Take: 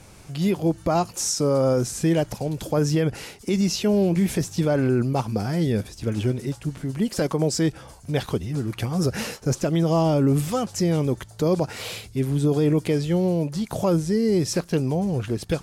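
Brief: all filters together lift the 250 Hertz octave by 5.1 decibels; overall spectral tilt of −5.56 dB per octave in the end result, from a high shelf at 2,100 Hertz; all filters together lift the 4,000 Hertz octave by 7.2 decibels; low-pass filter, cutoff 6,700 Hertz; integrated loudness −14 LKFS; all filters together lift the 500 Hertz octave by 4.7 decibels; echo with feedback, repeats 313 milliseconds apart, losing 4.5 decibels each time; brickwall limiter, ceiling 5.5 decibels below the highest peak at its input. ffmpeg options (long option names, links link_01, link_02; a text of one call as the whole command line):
ffmpeg -i in.wav -af "lowpass=6700,equalizer=frequency=250:width_type=o:gain=6,equalizer=frequency=500:width_type=o:gain=3.5,highshelf=frequency=2100:gain=5.5,equalizer=frequency=4000:width_type=o:gain=5,alimiter=limit=-12dB:level=0:latency=1,aecho=1:1:313|626|939|1252|1565|1878|2191|2504|2817:0.596|0.357|0.214|0.129|0.0772|0.0463|0.0278|0.0167|0.01,volume=5.5dB" out.wav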